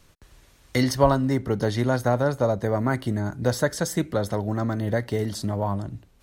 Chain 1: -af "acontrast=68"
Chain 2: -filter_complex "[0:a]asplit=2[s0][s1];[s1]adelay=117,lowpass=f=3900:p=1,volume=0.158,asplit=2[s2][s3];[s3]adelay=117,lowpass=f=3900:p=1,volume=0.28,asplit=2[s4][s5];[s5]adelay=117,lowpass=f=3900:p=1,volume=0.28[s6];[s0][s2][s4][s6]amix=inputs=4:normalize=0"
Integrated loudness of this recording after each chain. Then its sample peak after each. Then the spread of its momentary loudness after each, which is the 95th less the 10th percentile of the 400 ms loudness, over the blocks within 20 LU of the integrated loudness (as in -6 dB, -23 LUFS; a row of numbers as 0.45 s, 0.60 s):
-19.0 LUFS, -24.5 LUFS; -2.0 dBFS, -4.0 dBFS; 7 LU, 7 LU